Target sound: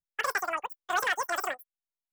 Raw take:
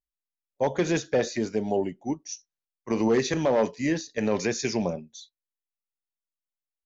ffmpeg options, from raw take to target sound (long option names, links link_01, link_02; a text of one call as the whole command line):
ffmpeg -i in.wav -af "asetrate=142443,aresample=44100,volume=-4.5dB" out.wav